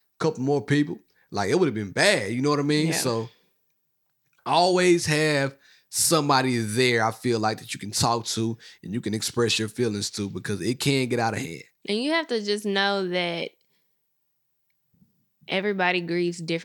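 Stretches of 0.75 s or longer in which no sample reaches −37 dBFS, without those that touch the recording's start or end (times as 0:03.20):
0:03.27–0:04.46
0:13.47–0:15.48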